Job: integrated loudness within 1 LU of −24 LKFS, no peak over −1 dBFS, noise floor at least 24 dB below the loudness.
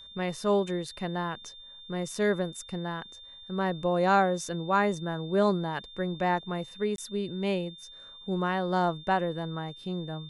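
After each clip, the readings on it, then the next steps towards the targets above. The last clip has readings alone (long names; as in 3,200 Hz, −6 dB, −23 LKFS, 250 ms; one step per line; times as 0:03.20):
number of dropouts 1; longest dropout 22 ms; interfering tone 3,600 Hz; level of the tone −46 dBFS; integrated loudness −29.5 LKFS; sample peak −12.0 dBFS; target loudness −24.0 LKFS
→ repair the gap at 0:06.96, 22 ms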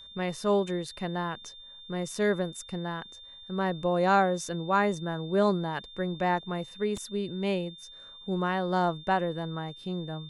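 number of dropouts 0; interfering tone 3,600 Hz; level of the tone −46 dBFS
→ notch filter 3,600 Hz, Q 30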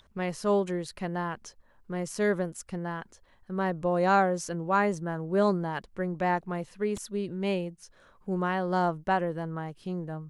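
interfering tone none found; integrated loudness −29.5 LKFS; sample peak −12.0 dBFS; target loudness −24.0 LKFS
→ level +5.5 dB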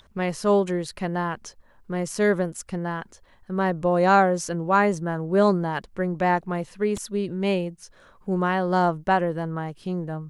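integrated loudness −24.0 LKFS; sample peak −6.5 dBFS; background noise floor −56 dBFS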